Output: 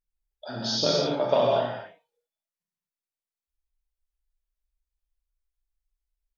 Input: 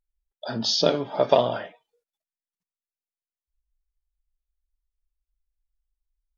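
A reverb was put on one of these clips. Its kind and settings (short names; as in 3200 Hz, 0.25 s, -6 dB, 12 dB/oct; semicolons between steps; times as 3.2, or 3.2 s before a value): non-linear reverb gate 0.28 s flat, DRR -4 dB; gain -7 dB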